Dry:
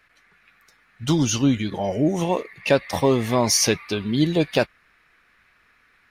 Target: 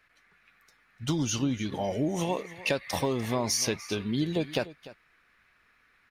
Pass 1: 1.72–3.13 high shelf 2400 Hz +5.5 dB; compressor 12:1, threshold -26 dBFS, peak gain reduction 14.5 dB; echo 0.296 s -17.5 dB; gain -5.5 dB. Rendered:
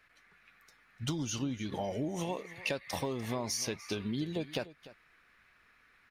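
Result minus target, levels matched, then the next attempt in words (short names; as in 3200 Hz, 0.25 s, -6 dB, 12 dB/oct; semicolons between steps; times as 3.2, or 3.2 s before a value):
compressor: peak gain reduction +7.5 dB
1.72–3.13 high shelf 2400 Hz +5.5 dB; compressor 12:1, threshold -18 dBFS, peak gain reduction 7.5 dB; echo 0.296 s -17.5 dB; gain -5.5 dB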